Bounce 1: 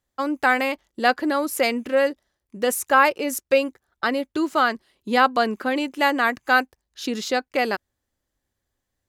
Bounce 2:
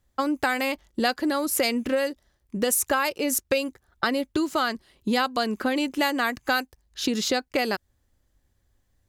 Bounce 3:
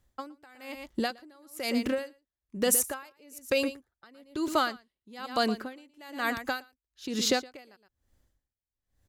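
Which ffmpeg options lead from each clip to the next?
ffmpeg -i in.wav -filter_complex "[0:a]lowshelf=frequency=140:gain=12,acrossover=split=3600[link_01][link_02];[link_01]acompressor=threshold=-26dB:ratio=6[link_03];[link_03][link_02]amix=inputs=2:normalize=0,volume=4dB" out.wav
ffmpeg -i in.wav -af "aecho=1:1:116:0.224,aeval=exprs='val(0)*pow(10,-31*(0.5-0.5*cos(2*PI*1.1*n/s))/20)':channel_layout=same" out.wav

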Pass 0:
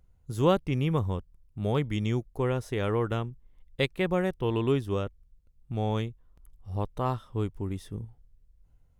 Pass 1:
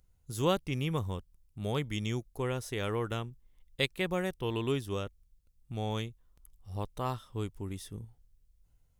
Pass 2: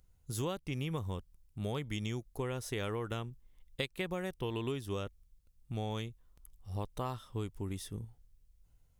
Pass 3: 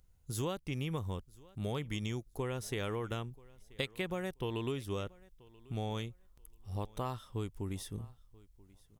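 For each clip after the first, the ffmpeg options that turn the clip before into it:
ffmpeg -i in.wav -af "highshelf=frequency=2700:gain=12,volume=-6dB" out.wav
ffmpeg -i in.wav -af "acompressor=threshold=-33dB:ratio=10,volume=1dB" out.wav
ffmpeg -i in.wav -af "aecho=1:1:983|1966:0.0668|0.0134" out.wav

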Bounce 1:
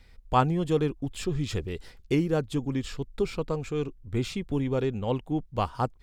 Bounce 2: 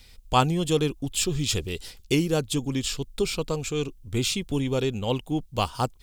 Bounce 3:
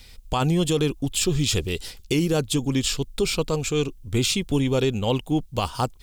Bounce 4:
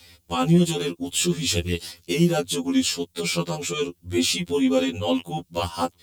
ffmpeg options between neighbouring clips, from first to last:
ffmpeg -i in.wav -af "aexciter=amount=4.2:drive=2.9:freq=2600,volume=1.5dB" out.wav
ffmpeg -i in.wav -af "alimiter=limit=-17dB:level=0:latency=1:release=34,volume=4.5dB" out.wav
ffmpeg -i in.wav -af "highpass=96,afftfilt=real='re*2*eq(mod(b,4),0)':imag='im*2*eq(mod(b,4),0)':win_size=2048:overlap=0.75,volume=3dB" out.wav

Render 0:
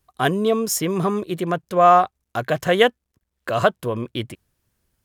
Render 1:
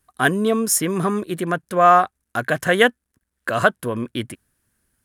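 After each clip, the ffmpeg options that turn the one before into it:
ffmpeg -i in.wav -af "equalizer=frequency=250:width_type=o:width=0.67:gain=6,equalizer=frequency=1600:width_type=o:width=0.67:gain=9,equalizer=frequency=10000:width_type=o:width=0.67:gain=11,volume=-2dB" out.wav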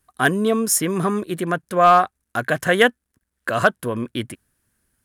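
ffmpeg -i in.wav -af "volume=5dB,asoftclip=hard,volume=-5dB" out.wav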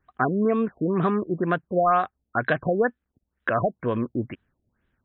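ffmpeg -i in.wav -af "acompressor=threshold=-18dB:ratio=3,afftfilt=real='re*lt(b*sr/1024,750*pow(4100/750,0.5+0.5*sin(2*PI*2.1*pts/sr)))':imag='im*lt(b*sr/1024,750*pow(4100/750,0.5+0.5*sin(2*PI*2.1*pts/sr)))':win_size=1024:overlap=0.75" out.wav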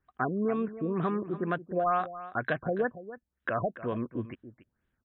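ffmpeg -i in.wav -af "aecho=1:1:283:0.188,volume=-7dB" out.wav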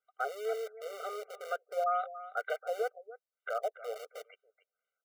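ffmpeg -i in.wav -filter_complex "[0:a]acrossover=split=110|360|990[link_01][link_02][link_03][link_04];[link_02]acrusher=bits=3:dc=4:mix=0:aa=0.000001[link_05];[link_01][link_05][link_03][link_04]amix=inputs=4:normalize=0,afftfilt=real='re*eq(mod(floor(b*sr/1024/390),2),1)':imag='im*eq(mod(floor(b*sr/1024/390),2),1)':win_size=1024:overlap=0.75,volume=-2.5dB" out.wav

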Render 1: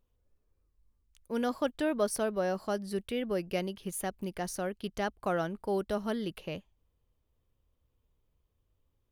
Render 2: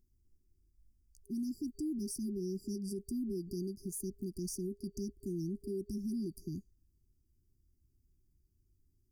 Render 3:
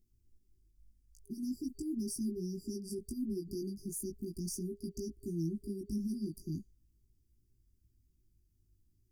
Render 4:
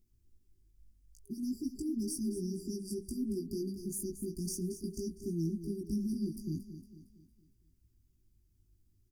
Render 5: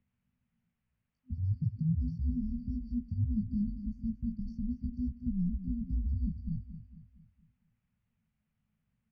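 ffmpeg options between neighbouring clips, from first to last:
ffmpeg -i in.wav -af "afftfilt=real='re*(1-between(b*sr/4096,400,4600))':imag='im*(1-between(b*sr/4096,400,4600))':win_size=4096:overlap=0.75,alimiter=level_in=10dB:limit=-24dB:level=0:latency=1:release=105,volume=-10dB,volume=2.5dB" out.wav
ffmpeg -i in.wav -af "equalizer=frequency=1000:width_type=o:width=1:gain=-14.5,flanger=delay=17.5:depth=2:speed=0.41,volume=4.5dB" out.wav
ffmpeg -i in.wav -af "aecho=1:1:229|458|687|916|1145:0.266|0.122|0.0563|0.0259|0.0119,volume=1.5dB" out.wav
ffmpeg -i in.wav -af "highpass=frequency=220:width_type=q:width=0.5412,highpass=frequency=220:width_type=q:width=1.307,lowpass=frequency=2900:width_type=q:width=0.5176,lowpass=frequency=2900:width_type=q:width=0.7071,lowpass=frequency=2900:width_type=q:width=1.932,afreqshift=-150,volume=6.5dB" out.wav

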